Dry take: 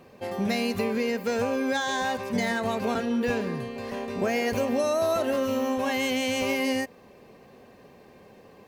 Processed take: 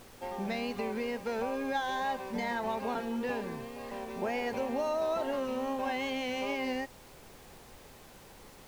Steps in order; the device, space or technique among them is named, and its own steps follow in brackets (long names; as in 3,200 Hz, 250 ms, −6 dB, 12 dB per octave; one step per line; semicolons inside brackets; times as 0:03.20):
horn gramophone (band-pass filter 180–4,300 Hz; parametric band 870 Hz +10.5 dB 0.25 octaves; tape wow and flutter; pink noise bed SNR 19 dB)
level −7.5 dB